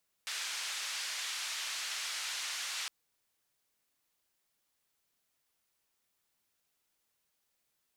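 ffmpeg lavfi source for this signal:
-f lavfi -i "anoisesrc=c=white:d=2.61:r=44100:seed=1,highpass=f=1400,lowpass=f=5900,volume=-27dB"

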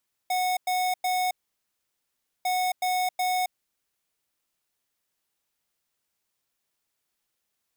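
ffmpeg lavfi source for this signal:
-f lavfi -i "aevalsrc='0.0531*(2*lt(mod(734*t,1),0.5)-1)*clip(min(mod(mod(t,2.15),0.37),0.27-mod(mod(t,2.15),0.37))/0.005,0,1)*lt(mod(t,2.15),1.11)':d=4.3:s=44100"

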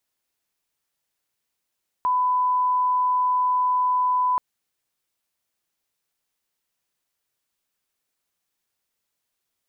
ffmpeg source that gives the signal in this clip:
-f lavfi -i "sine=f=1000:d=2.33:r=44100,volume=0.06dB"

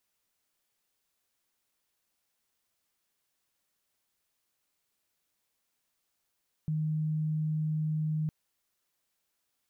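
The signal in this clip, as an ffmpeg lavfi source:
-f lavfi -i "sine=f=155:d=1.61:r=44100,volume=-9.44dB"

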